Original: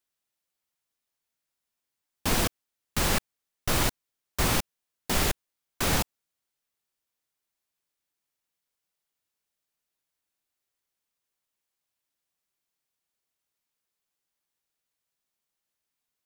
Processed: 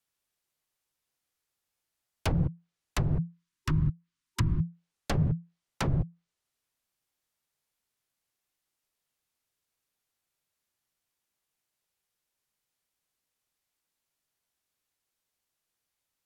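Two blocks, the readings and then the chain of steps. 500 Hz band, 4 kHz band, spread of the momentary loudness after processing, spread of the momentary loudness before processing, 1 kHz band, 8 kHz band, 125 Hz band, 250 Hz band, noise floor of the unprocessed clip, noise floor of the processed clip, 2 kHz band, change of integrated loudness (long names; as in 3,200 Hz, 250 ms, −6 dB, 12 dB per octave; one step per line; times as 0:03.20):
−7.5 dB, −13.0 dB, 10 LU, 11 LU, −9.0 dB, −16.0 dB, +6.0 dB, +1.0 dB, below −85 dBFS, below −85 dBFS, −10.5 dB, −3.5 dB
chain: treble cut that deepens with the level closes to 350 Hz, closed at −22 dBFS
frequency shifter −170 Hz
gain on a spectral selection 0:03.23–0:04.65, 380–910 Hz −17 dB
level +1.5 dB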